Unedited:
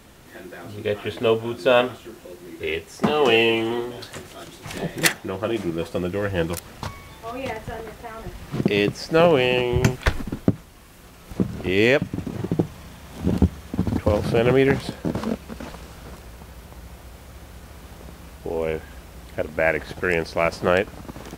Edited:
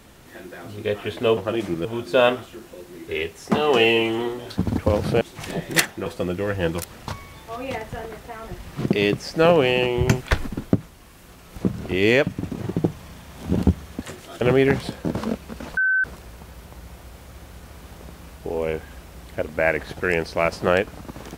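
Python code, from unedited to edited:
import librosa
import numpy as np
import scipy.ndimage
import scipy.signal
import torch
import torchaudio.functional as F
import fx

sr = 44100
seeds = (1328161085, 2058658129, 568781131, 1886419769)

y = fx.edit(x, sr, fx.swap(start_s=4.09, length_s=0.39, other_s=13.77, other_length_s=0.64),
    fx.move(start_s=5.33, length_s=0.48, to_s=1.37),
    fx.bleep(start_s=15.77, length_s=0.27, hz=1530.0, db=-16.5), tone=tone)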